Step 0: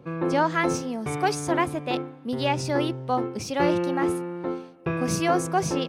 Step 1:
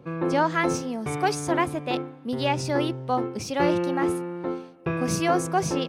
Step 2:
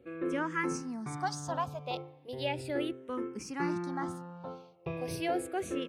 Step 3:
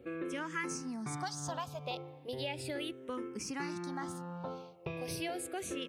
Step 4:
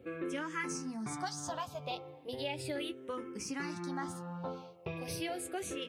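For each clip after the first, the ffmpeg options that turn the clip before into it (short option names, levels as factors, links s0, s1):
-af anull
-filter_complex "[0:a]asplit=2[s0][s1];[s1]afreqshift=-0.36[s2];[s0][s2]amix=inputs=2:normalize=1,volume=0.447"
-filter_complex "[0:a]acrossover=split=2500[s0][s1];[s0]acompressor=threshold=0.00794:ratio=6[s2];[s1]alimiter=level_in=4.47:limit=0.0631:level=0:latency=1:release=134,volume=0.224[s3];[s2][s3]amix=inputs=2:normalize=0,volume=1.68"
-af "flanger=delay=9.5:depth=1.9:regen=-35:speed=1.9:shape=triangular,volume=1.58"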